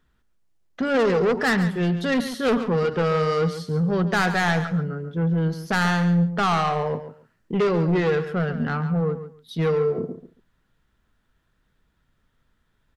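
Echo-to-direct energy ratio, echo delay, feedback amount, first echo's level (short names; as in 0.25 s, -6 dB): -11.5 dB, 0.139 s, 18%, -11.5 dB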